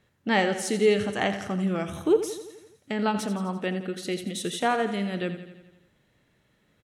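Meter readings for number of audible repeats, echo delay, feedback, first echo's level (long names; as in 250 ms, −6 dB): 6, 85 ms, 60%, −11.5 dB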